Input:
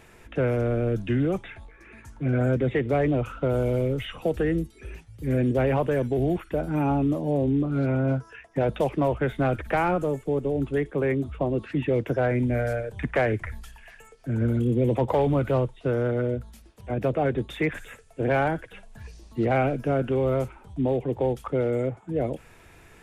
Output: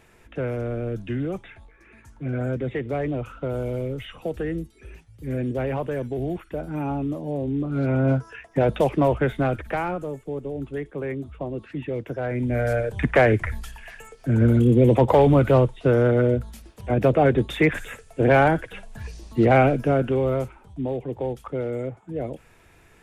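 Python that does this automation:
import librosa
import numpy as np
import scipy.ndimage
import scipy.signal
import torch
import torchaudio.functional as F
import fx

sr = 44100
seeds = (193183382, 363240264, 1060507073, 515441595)

y = fx.gain(x, sr, db=fx.line((7.46, -3.5), (8.07, 4.0), (9.18, 4.0), (10.01, -5.0), (12.2, -5.0), (12.84, 6.5), (19.59, 6.5), (20.81, -3.0)))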